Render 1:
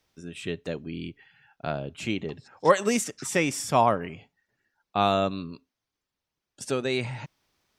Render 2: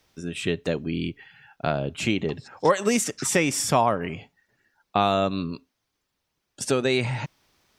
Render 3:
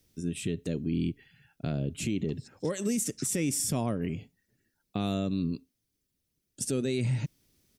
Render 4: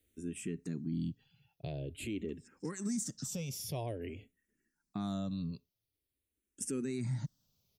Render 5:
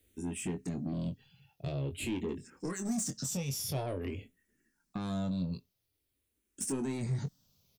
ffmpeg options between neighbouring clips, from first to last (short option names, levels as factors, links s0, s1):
-af "acompressor=threshold=0.0447:ratio=2.5,volume=2.37"
-af "firequalizer=gain_entry='entry(250,0);entry(840,-20);entry(2000,-12);entry(9600,2)':delay=0.05:min_phase=1,alimiter=limit=0.0841:level=0:latency=1:release=65,volume=1.12"
-filter_complex "[0:a]asplit=2[s0][s1];[s1]afreqshift=-0.48[s2];[s0][s2]amix=inputs=2:normalize=1,volume=0.562"
-filter_complex "[0:a]asoftclip=type=tanh:threshold=0.0178,asplit=2[s0][s1];[s1]adelay=22,volume=0.422[s2];[s0][s2]amix=inputs=2:normalize=0,volume=1.88"